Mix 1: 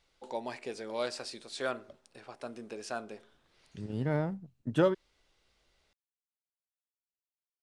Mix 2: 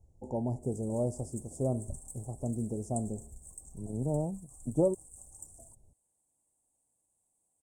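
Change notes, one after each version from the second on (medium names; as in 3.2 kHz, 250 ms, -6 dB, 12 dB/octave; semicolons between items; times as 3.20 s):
first voice: remove high-pass 470 Hz 12 dB/octave; background: unmuted; master: add elliptic band-stop 780–7300 Hz, stop band 40 dB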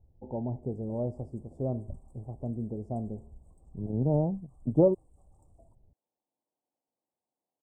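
second voice +6.0 dB; background: add high-pass 260 Hz 12 dB/octave; master: add distance through air 430 m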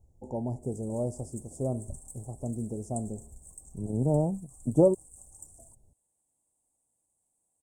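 background: remove high-pass 260 Hz 12 dB/octave; master: remove distance through air 430 m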